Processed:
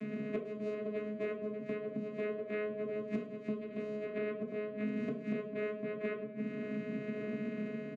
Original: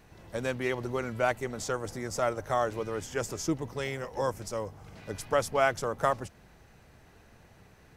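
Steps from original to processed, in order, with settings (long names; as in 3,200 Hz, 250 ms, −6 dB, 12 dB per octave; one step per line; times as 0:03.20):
running median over 15 samples
noise gate with hold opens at −54 dBFS
elliptic band-pass filter 150–2,700 Hz
parametric band 2,000 Hz −12 dB 1.5 octaves
automatic gain control gain up to 14 dB
gate with flip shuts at −22 dBFS, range −24 dB
channel vocoder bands 4, saw 211 Hz
Butterworth band-reject 870 Hz, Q 2
repeating echo 106 ms, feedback 45%, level −22 dB
convolution reverb RT60 0.40 s, pre-delay 3 ms, DRR −3 dB
multiband upward and downward compressor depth 100%
level +6.5 dB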